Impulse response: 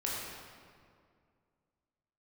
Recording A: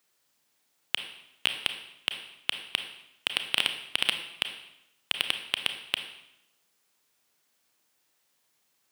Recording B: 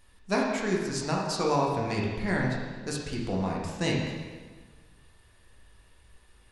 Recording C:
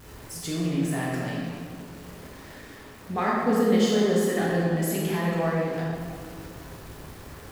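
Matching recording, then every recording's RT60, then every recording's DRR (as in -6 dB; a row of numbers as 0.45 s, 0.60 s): C; 0.85 s, 1.4 s, 2.2 s; 7.0 dB, -3.0 dB, -5.5 dB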